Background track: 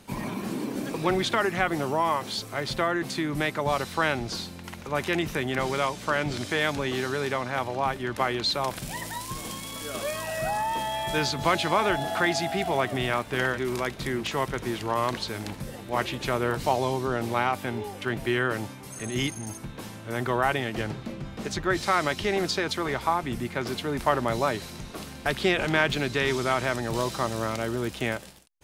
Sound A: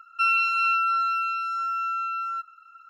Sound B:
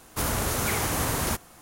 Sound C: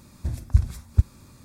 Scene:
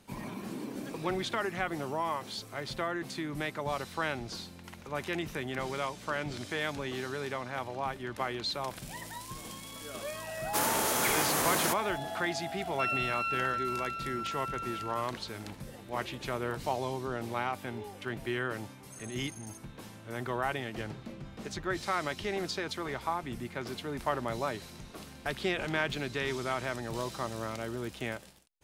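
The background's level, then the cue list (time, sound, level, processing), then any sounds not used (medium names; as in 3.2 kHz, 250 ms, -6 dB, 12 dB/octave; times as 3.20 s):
background track -8 dB
10.37 s: add B -1 dB + high-pass 250 Hz
12.60 s: add A -10.5 dB
not used: C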